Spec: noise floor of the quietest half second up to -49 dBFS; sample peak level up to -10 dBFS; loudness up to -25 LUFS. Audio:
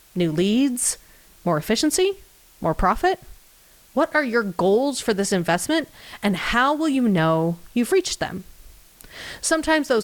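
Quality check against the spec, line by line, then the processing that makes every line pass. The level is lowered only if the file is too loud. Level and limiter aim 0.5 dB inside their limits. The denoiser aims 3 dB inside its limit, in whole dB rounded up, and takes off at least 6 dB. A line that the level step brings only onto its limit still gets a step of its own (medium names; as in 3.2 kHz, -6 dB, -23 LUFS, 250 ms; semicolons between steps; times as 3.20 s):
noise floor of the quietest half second -52 dBFS: pass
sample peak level -5.5 dBFS: fail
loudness -21.5 LUFS: fail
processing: trim -4 dB; peak limiter -10.5 dBFS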